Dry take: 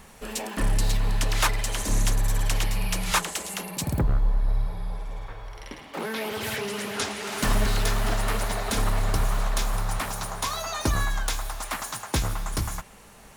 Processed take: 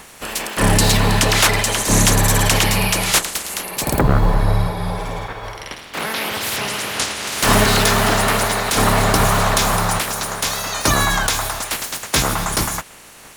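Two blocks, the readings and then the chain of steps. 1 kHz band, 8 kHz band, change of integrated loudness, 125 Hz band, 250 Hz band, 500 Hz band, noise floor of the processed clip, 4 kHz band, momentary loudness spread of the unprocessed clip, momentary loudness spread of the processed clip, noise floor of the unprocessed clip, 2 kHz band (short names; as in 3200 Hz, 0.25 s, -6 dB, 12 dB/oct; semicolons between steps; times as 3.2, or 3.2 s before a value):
+12.0 dB, +12.5 dB, +11.0 dB, +9.5 dB, +11.5 dB, +12.0 dB, -41 dBFS, +12.5 dB, 10 LU, 11 LU, -49 dBFS, +12.0 dB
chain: spectral limiter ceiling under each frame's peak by 17 dB; gain +7.5 dB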